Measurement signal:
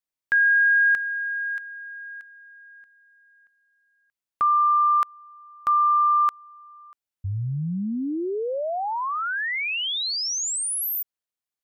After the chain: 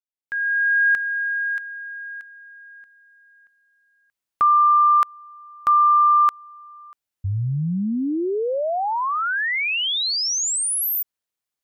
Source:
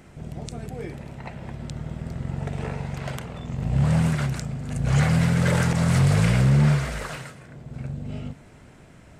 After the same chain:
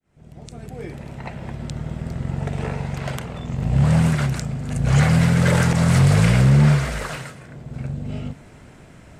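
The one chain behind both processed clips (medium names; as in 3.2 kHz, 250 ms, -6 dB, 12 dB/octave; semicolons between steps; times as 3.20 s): fade-in on the opening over 1.20 s; trim +4 dB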